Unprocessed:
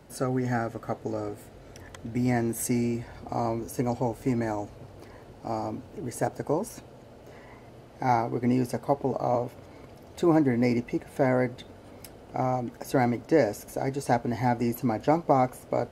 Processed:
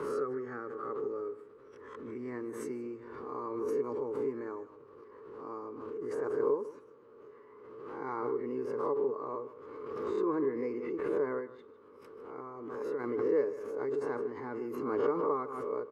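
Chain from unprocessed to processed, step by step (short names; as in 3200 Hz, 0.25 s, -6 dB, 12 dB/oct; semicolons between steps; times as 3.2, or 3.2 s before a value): spectral swells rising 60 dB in 0.30 s; 11.39–13.04 compressor 3:1, threshold -27 dBFS, peak gain reduction 7.5 dB; double band-pass 700 Hz, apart 1.4 oct; on a send: echo 0.154 s -15.5 dB; on the sum: backwards sustainer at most 32 dB/s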